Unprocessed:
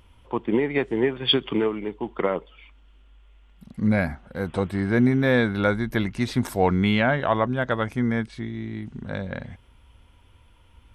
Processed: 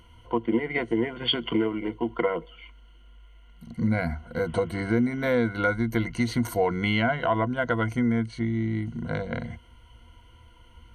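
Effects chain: ripple EQ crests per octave 1.9, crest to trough 15 dB; compressor 2.5:1, threshold -23 dBFS, peak gain reduction 9 dB

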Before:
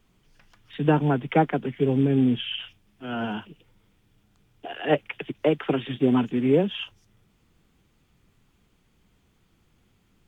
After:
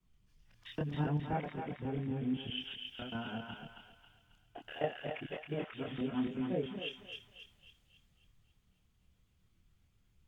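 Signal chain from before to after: local time reversal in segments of 0.13 s; compressor 2.5:1, threshold -39 dBFS, peak gain reduction 16.5 dB; chorus voices 6, 0.53 Hz, delay 27 ms, depth 1 ms; on a send: thinning echo 0.271 s, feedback 58%, high-pass 630 Hz, level -3 dB; on the sum: three-band expander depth 40%

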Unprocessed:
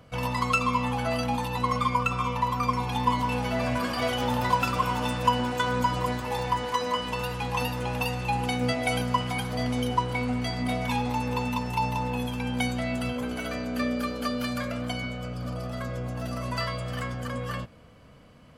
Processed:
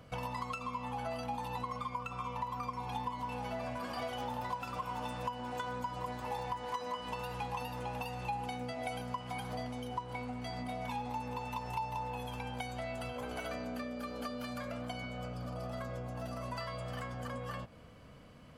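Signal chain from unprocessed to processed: 11.38–13.52 bell 220 Hz -8.5 dB 0.66 oct; compressor 12:1, threshold -36 dBFS, peak gain reduction 20 dB; dynamic EQ 790 Hz, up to +7 dB, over -55 dBFS, Q 1.6; gain -2.5 dB

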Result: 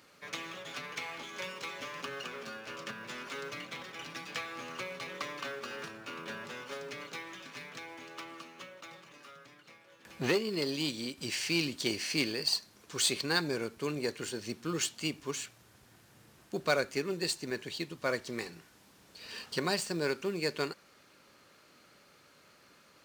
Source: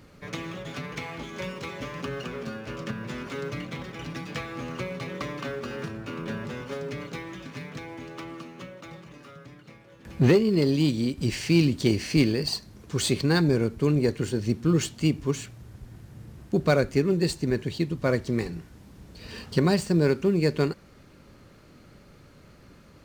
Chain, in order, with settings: HPF 1200 Hz 6 dB/oct; bell 2000 Hz -2 dB 0.25 oct

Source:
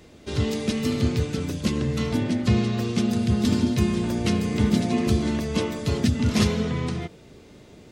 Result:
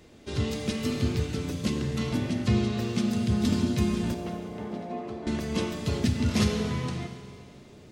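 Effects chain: 4.14–5.27 band-pass 690 Hz, Q 1.4; Schroeder reverb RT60 2.2 s, combs from 31 ms, DRR 6.5 dB; gain -4 dB

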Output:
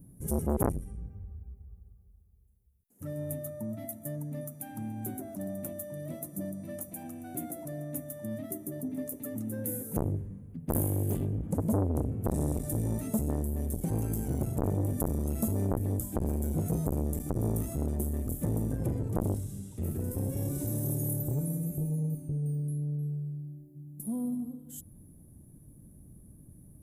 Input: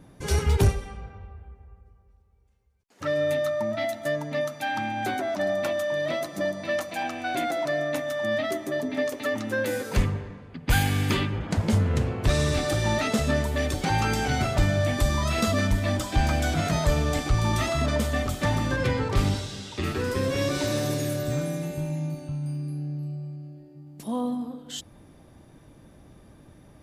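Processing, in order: EQ curve 190 Hz 0 dB, 1100 Hz -24 dB, 4500 Hz -28 dB, 11000 Hz +9 dB; core saturation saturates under 590 Hz

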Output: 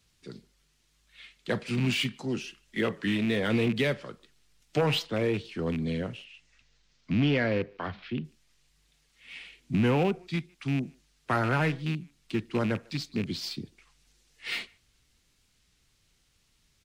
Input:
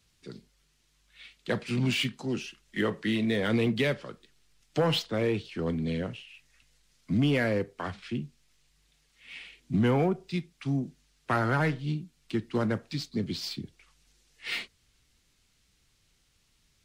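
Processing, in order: rattling part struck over -28 dBFS, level -27 dBFS; 6.24–8.24 LPF 7800 Hz -> 4000 Hz 24 dB/oct; speakerphone echo 0.15 s, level -27 dB; record warp 33 1/3 rpm, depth 100 cents

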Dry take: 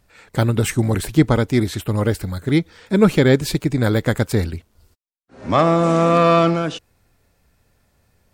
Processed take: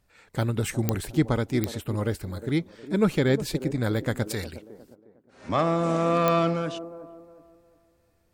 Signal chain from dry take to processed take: 4.3–5.49 tilt shelf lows -6.5 dB, about 910 Hz; band-limited delay 0.359 s, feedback 33%, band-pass 420 Hz, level -11.5 dB; pops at 0.89/1.64/6.28, 0 dBFS; gain -8.5 dB

